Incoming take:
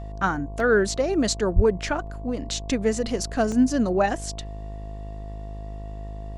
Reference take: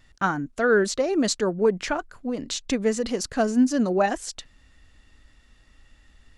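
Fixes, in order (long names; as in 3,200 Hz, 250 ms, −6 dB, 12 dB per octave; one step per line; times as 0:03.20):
hum removal 51.9 Hz, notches 22
notch filter 680 Hz, Q 30
0:01.55–0:01.67: high-pass filter 140 Hz 24 dB per octave
repair the gap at 0:00.60/0:02.07/0:03.52, 1.4 ms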